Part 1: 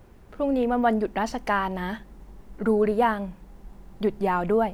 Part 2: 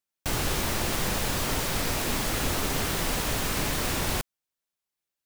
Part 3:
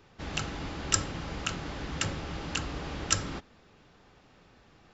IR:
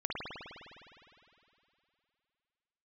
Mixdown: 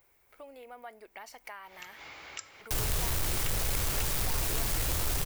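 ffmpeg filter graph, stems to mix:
-filter_complex "[0:a]aemphasis=mode=production:type=bsi,volume=-12.5dB,asplit=2[a][b];[1:a]highshelf=f=7k:g=9.5,acrossover=split=310[c][d];[d]acompressor=threshold=-56dB:ratio=1.5[e];[c][e]amix=inputs=2:normalize=0,aeval=exprs='0.251*(cos(1*acos(clip(val(0)/0.251,-1,1)))-cos(1*PI/2))+0.126*(cos(7*acos(clip(val(0)/0.251,-1,1)))-cos(7*PI/2))':c=same,adelay=2450,volume=-1.5dB[f];[2:a]highpass=f=500:p=1,adelay=1450,volume=-3.5dB[g];[b]apad=whole_len=281605[h];[g][h]sidechaincompress=threshold=-53dB:ratio=4:attack=46:release=113[i];[a][i]amix=inputs=2:normalize=0,equalizer=f=2.2k:w=6.8:g=12,acompressor=threshold=-43dB:ratio=3,volume=0dB[j];[f][j]amix=inputs=2:normalize=0,equalizer=f=220:t=o:w=1.3:g=-14"

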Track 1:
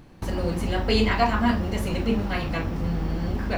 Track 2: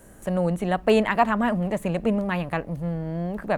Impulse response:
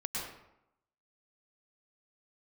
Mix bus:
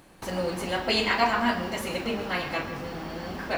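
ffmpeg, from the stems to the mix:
-filter_complex "[0:a]highpass=f=680:p=1,volume=0dB,asplit=2[a][b];[b]volume=-10dB[c];[1:a]volume=-10dB[d];[2:a]atrim=start_sample=2205[e];[c][e]afir=irnorm=-1:irlink=0[f];[a][d][f]amix=inputs=3:normalize=0"

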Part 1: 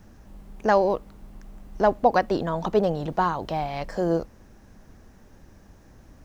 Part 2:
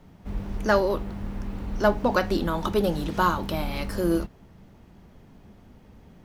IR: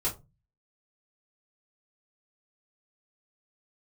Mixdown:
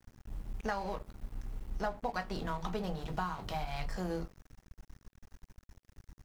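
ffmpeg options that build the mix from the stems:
-filter_complex "[0:a]equalizer=f=450:t=o:w=1.8:g=-13,volume=-3dB,asplit=2[a][b];[b]volume=-8dB[c];[1:a]adelay=2.6,volume=-17.5dB[d];[2:a]atrim=start_sample=2205[e];[c][e]afir=irnorm=-1:irlink=0[f];[a][d][f]amix=inputs=3:normalize=0,aeval=exprs='sgn(val(0))*max(abs(val(0))-0.00631,0)':c=same,acompressor=threshold=-32dB:ratio=6"

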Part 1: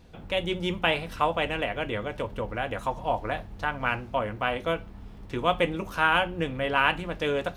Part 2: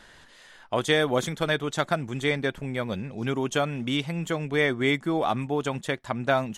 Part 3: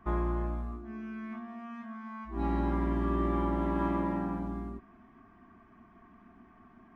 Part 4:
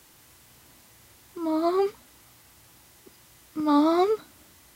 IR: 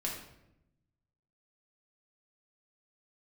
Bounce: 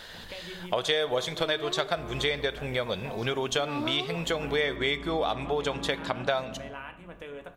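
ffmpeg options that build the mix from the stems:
-filter_complex "[0:a]equalizer=f=4.9k:t=o:w=0.57:g=-15,acompressor=threshold=-35dB:ratio=5,volume=-6.5dB,asplit=2[a][b];[b]volume=-8dB[c];[1:a]equalizer=f=250:t=o:w=1:g=-8,equalizer=f=500:t=o:w=1:g=7,equalizer=f=4k:t=o:w=1:g=10,equalizer=f=8k:t=o:w=1:g=-4,volume=2.5dB,asplit=2[d][e];[e]volume=-13.5dB[f];[2:a]adelay=1900,volume=-8dB,asplit=2[g][h];[h]volume=-5.5dB[i];[3:a]volume=-6dB[j];[4:a]atrim=start_sample=2205[k];[c][f][i]amix=inputs=3:normalize=0[l];[l][k]afir=irnorm=-1:irlink=0[m];[a][d][g][j][m]amix=inputs=5:normalize=0,lowshelf=f=490:g=-3.5,acompressor=threshold=-27dB:ratio=3"

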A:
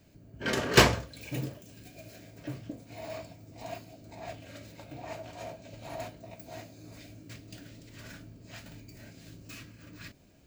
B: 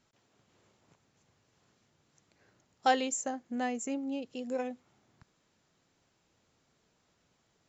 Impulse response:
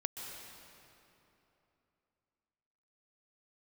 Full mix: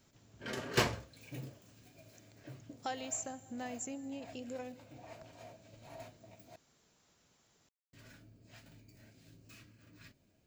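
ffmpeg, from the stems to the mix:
-filter_complex "[0:a]flanger=delay=7.3:depth=2.4:regen=-47:speed=1.5:shape=triangular,volume=-7dB,asplit=3[a][b][c];[a]atrim=end=6.56,asetpts=PTS-STARTPTS,afade=t=out:st=6.556:d=0.004:c=hsin[d];[b]atrim=start=6.56:end=7.93,asetpts=PTS-STARTPTS,volume=0[e];[c]atrim=start=7.93,asetpts=PTS-STARTPTS,afade=t=in:d=0.004:c=hsin[f];[d][e][f]concat=n=3:v=0:a=1[g];[1:a]acompressor=threshold=-48dB:ratio=2,highshelf=f=5.5k:g=9.5,volume=-1.5dB,asplit=2[h][i];[i]volume=-13.5dB[j];[2:a]atrim=start_sample=2205[k];[j][k]afir=irnorm=-1:irlink=0[l];[g][h][l]amix=inputs=3:normalize=0"

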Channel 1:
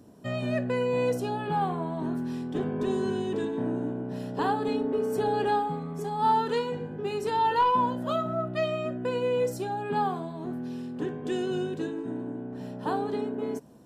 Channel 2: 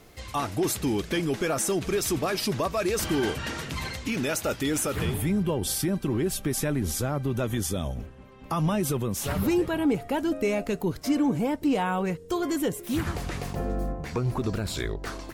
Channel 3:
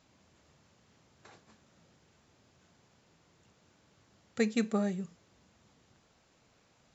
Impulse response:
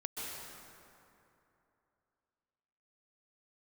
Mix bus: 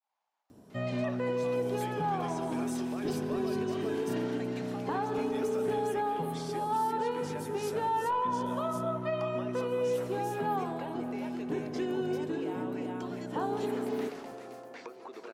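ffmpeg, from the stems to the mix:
-filter_complex "[0:a]acrossover=split=2700[a][b];[b]acompressor=threshold=-56dB:ratio=4:attack=1:release=60[c];[a][c]amix=inputs=2:normalize=0,adelay=500,volume=-4dB,asplit=2[d][e];[e]volume=-9.5dB[f];[1:a]highpass=f=370:w=0.5412,highpass=f=370:w=1.3066,adelay=700,volume=-5dB,asplit=3[g][h][i];[h]volume=-21dB[j];[i]volume=-13.5dB[k];[2:a]agate=range=-33dB:threshold=-56dB:ratio=3:detection=peak,highpass=f=840:t=q:w=5.8,volume=-7.5dB,asplit=2[l][m];[m]apad=whole_len=706985[n];[g][n]sidechaincompress=threshold=-52dB:ratio=8:attack=16:release=1040[o];[o][l]amix=inputs=2:normalize=0,lowpass=5.4k,acompressor=threshold=-44dB:ratio=6,volume=0dB[p];[3:a]atrim=start_sample=2205[q];[f][j]amix=inputs=2:normalize=0[r];[r][q]afir=irnorm=-1:irlink=0[s];[k]aecho=0:1:392:1[t];[d][p][s][t]amix=inputs=4:normalize=0,alimiter=limit=-23dB:level=0:latency=1:release=123"

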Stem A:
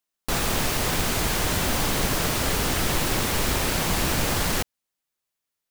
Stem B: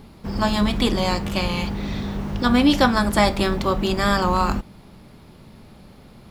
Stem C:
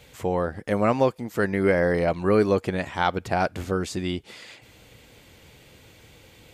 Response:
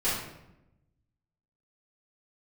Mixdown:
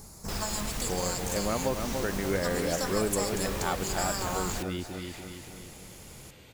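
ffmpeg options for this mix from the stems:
-filter_complex "[0:a]volume=-8dB,asplit=2[a][b];[b]volume=-15dB[c];[1:a]highshelf=f=4.7k:t=q:w=3:g=14,acompressor=threshold=-24dB:ratio=2,equalizer=f=260:t=o:w=1:g=-8.5,volume=-3dB[d];[2:a]adelay=650,volume=-2.5dB,asplit=2[e][f];[f]volume=-7dB[g];[c][g]amix=inputs=2:normalize=0,aecho=0:1:289|578|867|1156|1445|1734:1|0.45|0.202|0.0911|0.041|0.0185[h];[a][d][e][h]amix=inputs=4:normalize=0,acompressor=threshold=-38dB:ratio=1.5"

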